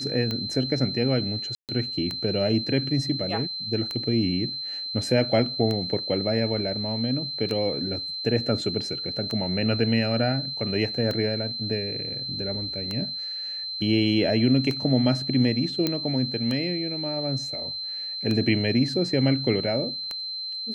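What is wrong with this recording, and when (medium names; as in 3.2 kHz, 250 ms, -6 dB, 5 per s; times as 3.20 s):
tick 33 1/3 rpm -16 dBFS
whine 4.1 kHz -30 dBFS
1.55–1.69 s: dropout 138 ms
7.49 s: dropout 4 ms
15.87 s: pop -10 dBFS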